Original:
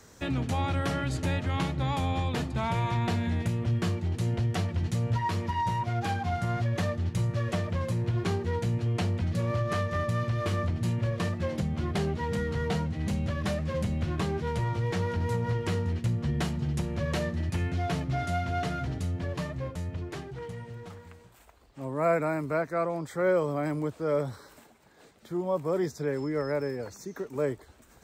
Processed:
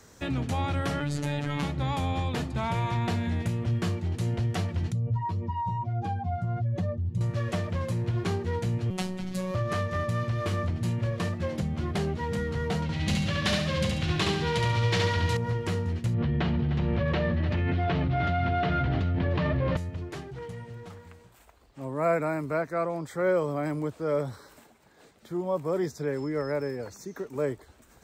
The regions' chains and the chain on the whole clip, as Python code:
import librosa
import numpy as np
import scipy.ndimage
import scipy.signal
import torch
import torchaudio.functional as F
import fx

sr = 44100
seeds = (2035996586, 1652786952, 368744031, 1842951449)

y = fx.chain(x, sr, fx.robotise(hz=145.0),
    fx.env_flatten(amount_pct=70), at=(1.0, 1.63))
y = fx.chain(y, sr, fx.spec_expand(power=1.5),
    fx.peak_eq(hz=1700.0, db=-7.0, octaves=1.2), at=(4.92, 7.21))
y = fx.chain(y, sr, fx.high_shelf(hz=4100.0, db=8.5),
    fx.robotise(hz=185.0), at=(8.9, 9.55))
y = fx.chain(y, sr, fx.peak_eq(hz=3600.0, db=12.5, octaves=2.0),
    fx.echo_feedback(ms=70, feedback_pct=41, wet_db=-3), at=(12.82, 15.37))
y = fx.chain(y, sr, fx.lowpass(hz=3700.0, slope=24),
    fx.echo_single(ms=303, db=-12.0),
    fx.env_flatten(amount_pct=100), at=(16.14, 19.77))